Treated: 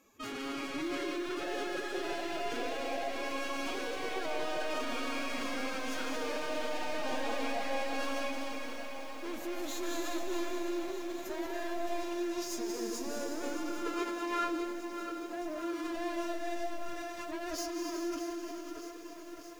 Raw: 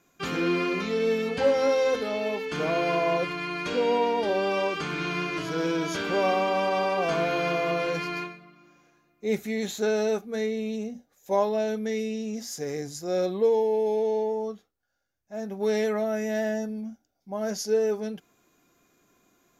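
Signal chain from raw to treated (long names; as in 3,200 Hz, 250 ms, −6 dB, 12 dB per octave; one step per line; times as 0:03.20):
brickwall limiter −22.5 dBFS, peak gain reduction 10.5 dB
soft clipping −38 dBFS, distortion −7 dB
comb and all-pass reverb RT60 3.1 s, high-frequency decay 1×, pre-delay 120 ms, DRR 0 dB
phase-vocoder pitch shift with formants kept +8 semitones
feedback echo at a low word length 618 ms, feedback 80%, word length 9 bits, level −11.5 dB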